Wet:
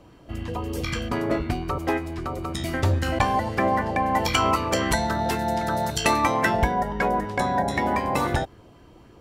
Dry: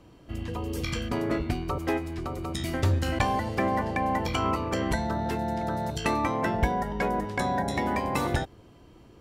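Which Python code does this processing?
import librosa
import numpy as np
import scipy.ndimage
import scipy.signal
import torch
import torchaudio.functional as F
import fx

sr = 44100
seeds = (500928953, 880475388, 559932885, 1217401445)

y = fx.high_shelf(x, sr, hz=2400.0, db=10.5, at=(4.15, 6.62), fade=0.02)
y = fx.bell_lfo(y, sr, hz=3.8, low_hz=590.0, high_hz=1800.0, db=6)
y = y * librosa.db_to_amplitude(2.0)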